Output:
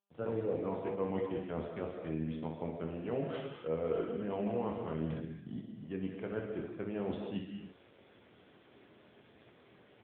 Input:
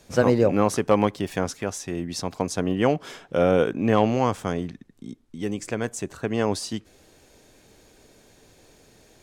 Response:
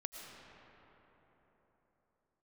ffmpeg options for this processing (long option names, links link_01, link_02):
-filter_complex "[0:a]areverse,acompressor=threshold=-37dB:ratio=5,areverse,asetrate=40517,aresample=44100,aresample=8000,aeval=exprs='sgn(val(0))*max(abs(val(0))-0.00133,0)':channel_layout=same,aresample=44100,aecho=1:1:25|63:0.501|0.473,adynamicequalizer=threshold=0.00251:dfrequency=470:dqfactor=2.6:tfrequency=470:tqfactor=2.6:attack=5:release=100:ratio=0.375:range=2:mode=boostabove:tftype=bell[link_01];[1:a]atrim=start_sample=2205,afade=type=out:start_time=0.33:duration=0.01,atrim=end_sample=14994[link_02];[link_01][link_02]afir=irnorm=-1:irlink=0,volume=3.5dB" -ar 8000 -c:a libopencore_amrnb -b:a 10200